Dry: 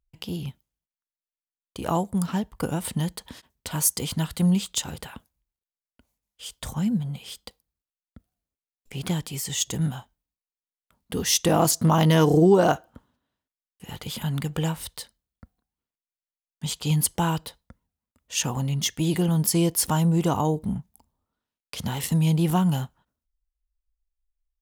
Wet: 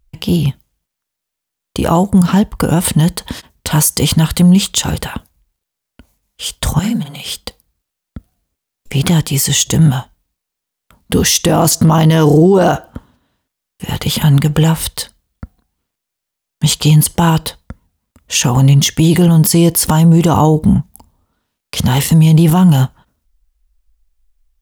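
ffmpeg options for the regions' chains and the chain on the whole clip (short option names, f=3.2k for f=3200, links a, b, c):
-filter_complex "[0:a]asettb=1/sr,asplit=3[a][b][c];[a]atrim=end=6.794[d];[b]atrim=start=6.79:end=7.25,asetpts=PTS-STARTPTS,afade=t=in:d=0.004:c=qsin,afade=t=out:st=0.456:d=0.004:c=qsin,highpass=f=900:p=1,asplit=2[e][f];[f]adelay=46,volume=-3dB[g];[e][g]amix=inputs=2:normalize=0,atrim=end_sample=20286[h];[c]atrim=start=7.246[i];[d][h]acrossfade=d=0.004:c1=hsin:c2=qsin[j];[j][i]acrossfade=d=0.004:c1=qsin:c2=hsin,lowshelf=f=170:g=4.5,alimiter=level_in=17.5dB:limit=-1dB:release=50:level=0:latency=1,volume=-1dB"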